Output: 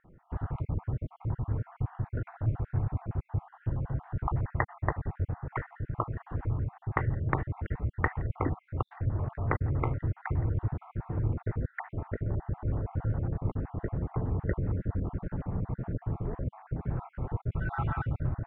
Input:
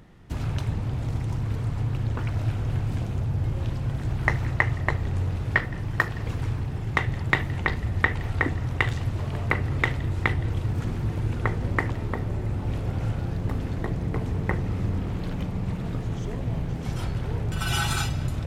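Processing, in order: random holes in the spectrogram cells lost 42%; low-pass 1.5 kHz 24 dB/octave; peaking EQ 210 Hz -4 dB 0.41 oct; trim -2 dB

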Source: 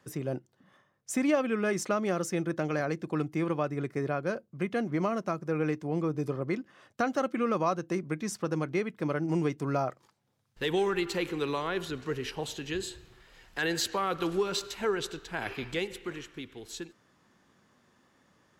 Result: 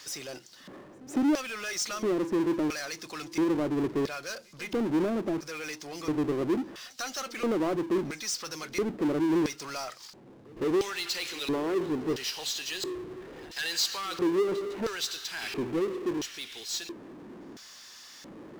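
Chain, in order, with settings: LFO band-pass square 0.74 Hz 330–5100 Hz; power-law waveshaper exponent 0.5; pre-echo 156 ms -24 dB; trim +2 dB

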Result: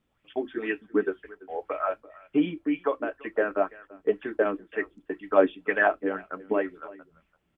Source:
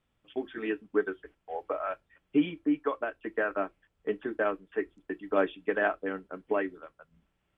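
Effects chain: delay 338 ms -21 dB; sweeping bell 2 Hz 220–2500 Hz +11 dB

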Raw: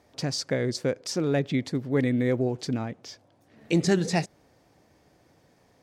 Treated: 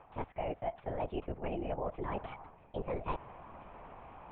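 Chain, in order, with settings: low-pass 2.1 kHz 24 dB/octave; peaking EQ 710 Hz +12 dB 1.8 oct; reverse; compression 10:1, threshold -38 dBFS, peak gain reduction 25.5 dB; reverse; speed mistake 33 rpm record played at 45 rpm; LPC vocoder at 8 kHz whisper; trim +3.5 dB

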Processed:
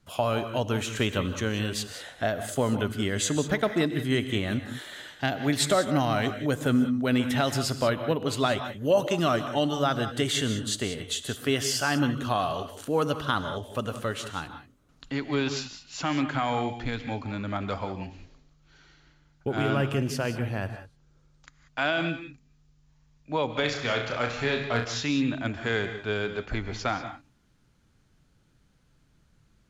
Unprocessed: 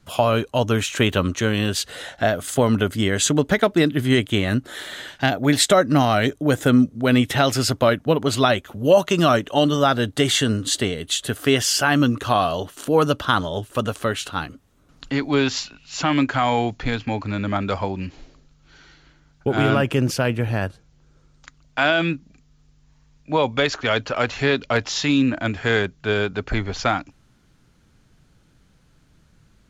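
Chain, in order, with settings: 23.60–24.85 s: flutter echo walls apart 5.8 m, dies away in 0.39 s; gated-style reverb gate 210 ms rising, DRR 9 dB; trim -8 dB

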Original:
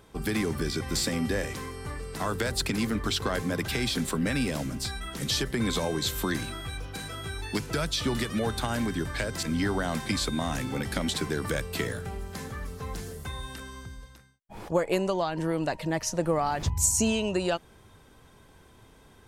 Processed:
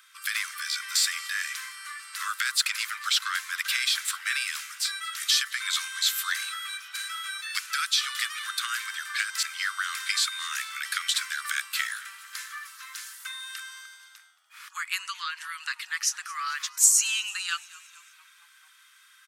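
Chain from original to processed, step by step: steep high-pass 1.2 kHz 72 dB/octave; frequency-shifting echo 223 ms, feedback 59%, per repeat -82 Hz, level -21 dB; trim +6 dB

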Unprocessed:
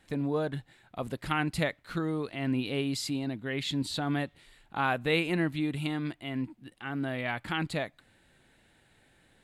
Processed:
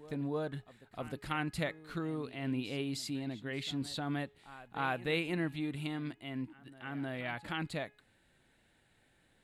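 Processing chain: de-hum 419.5 Hz, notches 7; reverse echo 309 ms -17.5 dB; trim -6 dB

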